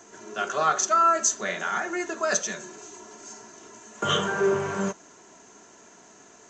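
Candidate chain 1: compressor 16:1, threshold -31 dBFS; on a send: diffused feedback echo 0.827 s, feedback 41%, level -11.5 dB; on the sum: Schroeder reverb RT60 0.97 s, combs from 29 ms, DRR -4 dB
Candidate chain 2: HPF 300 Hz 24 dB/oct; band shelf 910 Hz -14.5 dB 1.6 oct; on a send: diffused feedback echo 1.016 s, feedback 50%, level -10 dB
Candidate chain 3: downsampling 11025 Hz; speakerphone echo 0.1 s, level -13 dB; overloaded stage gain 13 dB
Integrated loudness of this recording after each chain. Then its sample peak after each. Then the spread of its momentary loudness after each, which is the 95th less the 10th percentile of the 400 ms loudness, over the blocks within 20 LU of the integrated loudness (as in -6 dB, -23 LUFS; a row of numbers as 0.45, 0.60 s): -30.5, -30.5, -25.5 LUFS; -16.0, -10.5, -13.0 dBFS; 12, 15, 16 LU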